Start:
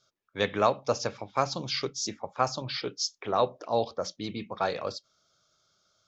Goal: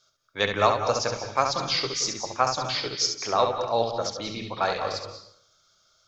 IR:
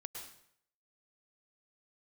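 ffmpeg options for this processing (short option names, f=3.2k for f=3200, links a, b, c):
-filter_complex "[0:a]equalizer=f=160:w=0.34:g=-9,asplit=2[a][b];[1:a]atrim=start_sample=2205,lowshelf=f=170:g=12,adelay=69[c];[b][c]afir=irnorm=-1:irlink=0,volume=-1.5dB[d];[a][d]amix=inputs=2:normalize=0,volume=5.5dB"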